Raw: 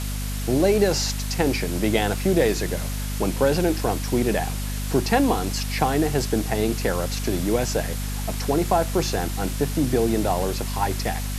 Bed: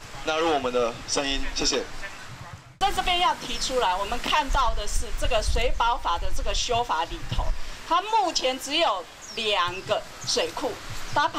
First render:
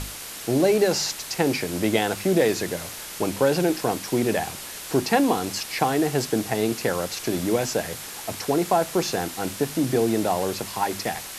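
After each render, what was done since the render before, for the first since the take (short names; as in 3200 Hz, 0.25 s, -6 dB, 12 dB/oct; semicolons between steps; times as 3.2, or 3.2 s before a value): notches 50/100/150/200/250 Hz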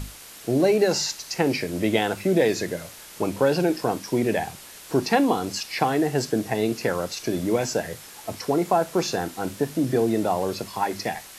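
noise print and reduce 7 dB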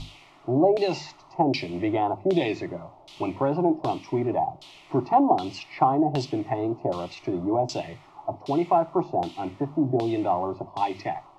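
fixed phaser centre 320 Hz, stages 8; LFO low-pass saw down 1.3 Hz 610–3900 Hz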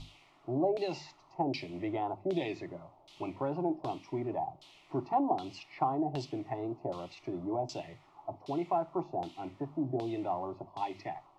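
gain -10 dB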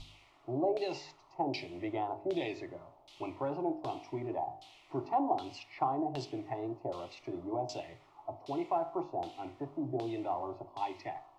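bell 190 Hz -11 dB 0.59 oct; de-hum 51.62 Hz, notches 35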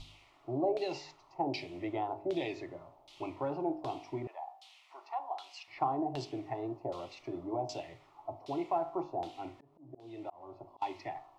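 4.27–5.68 Bessel high-pass 1100 Hz, order 4; 9.54–10.82 auto swell 0.513 s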